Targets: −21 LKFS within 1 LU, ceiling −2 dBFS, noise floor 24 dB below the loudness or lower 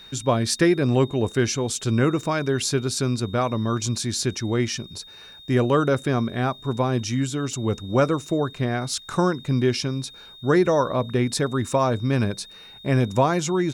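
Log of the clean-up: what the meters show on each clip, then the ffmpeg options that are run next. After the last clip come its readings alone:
interfering tone 3,700 Hz; level of the tone −43 dBFS; integrated loudness −23.0 LKFS; sample peak −8.5 dBFS; target loudness −21.0 LKFS
→ -af "bandreject=frequency=3700:width=30"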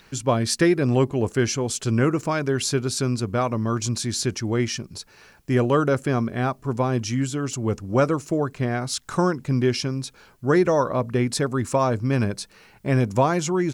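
interfering tone none found; integrated loudness −23.0 LKFS; sample peak −8.5 dBFS; target loudness −21.0 LKFS
→ -af "volume=2dB"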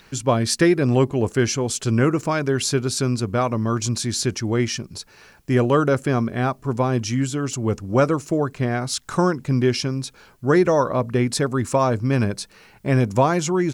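integrated loudness −21.0 LKFS; sample peak −6.5 dBFS; background noise floor −52 dBFS

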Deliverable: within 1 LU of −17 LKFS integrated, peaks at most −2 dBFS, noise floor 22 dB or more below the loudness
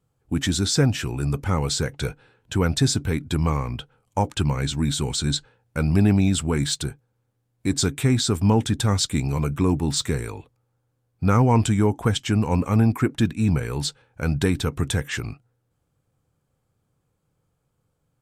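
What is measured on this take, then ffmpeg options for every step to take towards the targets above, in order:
integrated loudness −23.0 LKFS; sample peak −7.0 dBFS; target loudness −17.0 LKFS
→ -af "volume=6dB,alimiter=limit=-2dB:level=0:latency=1"

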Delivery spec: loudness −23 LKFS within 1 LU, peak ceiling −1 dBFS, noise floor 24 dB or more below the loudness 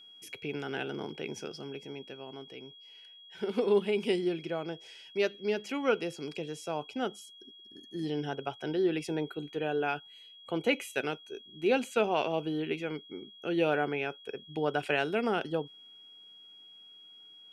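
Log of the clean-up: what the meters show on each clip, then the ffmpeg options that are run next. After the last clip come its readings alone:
interfering tone 3,300 Hz; level of the tone −51 dBFS; integrated loudness −33.0 LKFS; sample peak −14.5 dBFS; target loudness −23.0 LKFS
→ -af "bandreject=frequency=3300:width=30"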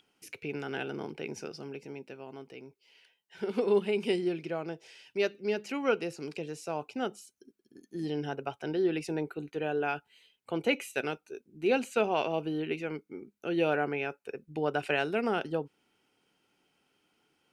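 interfering tone none found; integrated loudness −33.0 LKFS; sample peak −15.0 dBFS; target loudness −23.0 LKFS
→ -af "volume=10dB"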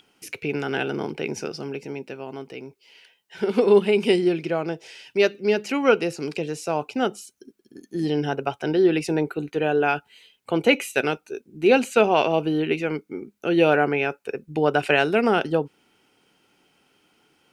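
integrated loudness −23.0 LKFS; sample peak −5.0 dBFS; background noise floor −66 dBFS

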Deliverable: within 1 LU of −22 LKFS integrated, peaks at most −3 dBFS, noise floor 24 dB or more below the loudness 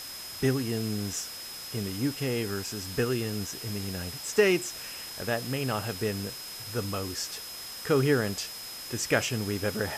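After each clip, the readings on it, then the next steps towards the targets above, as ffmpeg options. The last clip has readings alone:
interfering tone 5,100 Hz; level of the tone −41 dBFS; background noise floor −41 dBFS; target noise floor −54 dBFS; integrated loudness −30.0 LKFS; sample peak −10.0 dBFS; target loudness −22.0 LKFS
→ -af "bandreject=frequency=5100:width=30"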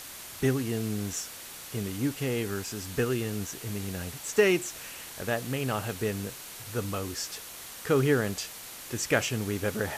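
interfering tone none found; background noise floor −44 dBFS; target noise floor −55 dBFS
→ -af "afftdn=noise_reduction=11:noise_floor=-44"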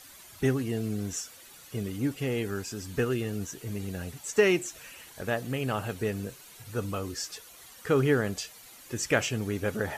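background noise floor −51 dBFS; target noise floor −55 dBFS
→ -af "afftdn=noise_reduction=6:noise_floor=-51"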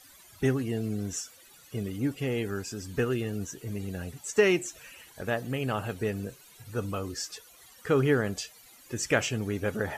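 background noise floor −55 dBFS; integrated loudness −30.5 LKFS; sample peak −10.5 dBFS; target loudness −22.0 LKFS
→ -af "volume=8.5dB,alimiter=limit=-3dB:level=0:latency=1"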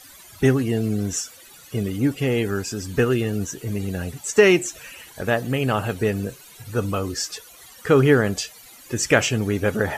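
integrated loudness −22.0 LKFS; sample peak −3.0 dBFS; background noise floor −46 dBFS

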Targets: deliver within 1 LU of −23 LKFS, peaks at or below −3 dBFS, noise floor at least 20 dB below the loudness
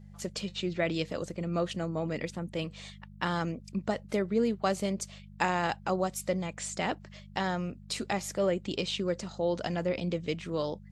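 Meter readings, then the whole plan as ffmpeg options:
mains hum 50 Hz; hum harmonics up to 200 Hz; level of the hum −47 dBFS; integrated loudness −32.5 LKFS; sample peak −10.5 dBFS; target loudness −23.0 LKFS
→ -af "bandreject=frequency=50:width_type=h:width=4,bandreject=frequency=100:width_type=h:width=4,bandreject=frequency=150:width_type=h:width=4,bandreject=frequency=200:width_type=h:width=4"
-af "volume=9.5dB,alimiter=limit=-3dB:level=0:latency=1"

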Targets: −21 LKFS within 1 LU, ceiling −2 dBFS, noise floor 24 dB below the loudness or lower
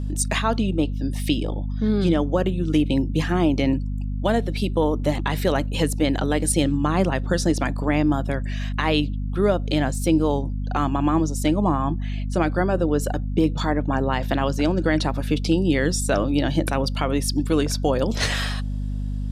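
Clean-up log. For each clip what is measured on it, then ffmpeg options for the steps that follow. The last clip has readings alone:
mains hum 50 Hz; hum harmonics up to 250 Hz; level of the hum −24 dBFS; integrated loudness −22.5 LKFS; sample peak −7.5 dBFS; target loudness −21.0 LKFS
→ -af "bandreject=frequency=50:width_type=h:width=4,bandreject=frequency=100:width_type=h:width=4,bandreject=frequency=150:width_type=h:width=4,bandreject=frequency=200:width_type=h:width=4,bandreject=frequency=250:width_type=h:width=4"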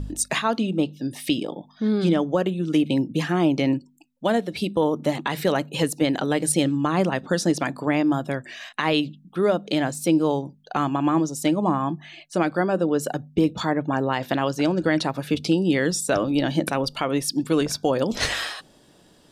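mains hum none found; integrated loudness −23.5 LKFS; sample peak −9.0 dBFS; target loudness −21.0 LKFS
→ -af "volume=2.5dB"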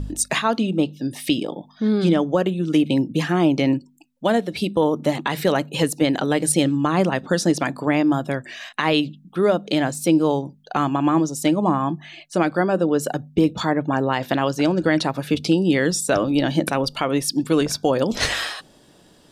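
integrated loudness −21.0 LKFS; sample peak −6.5 dBFS; background noise floor −53 dBFS

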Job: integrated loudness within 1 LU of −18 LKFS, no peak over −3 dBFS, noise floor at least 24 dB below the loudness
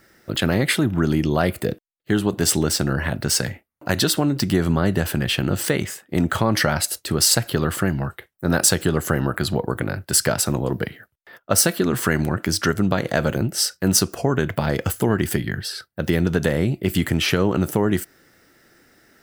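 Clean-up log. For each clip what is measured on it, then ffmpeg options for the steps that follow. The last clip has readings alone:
integrated loudness −21.0 LKFS; sample peak −2.5 dBFS; target loudness −18.0 LKFS
→ -af "volume=3dB,alimiter=limit=-3dB:level=0:latency=1"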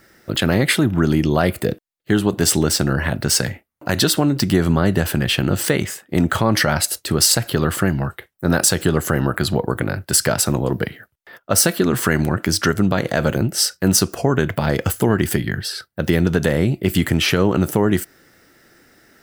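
integrated loudness −18.5 LKFS; sample peak −3.0 dBFS; background noise floor −66 dBFS

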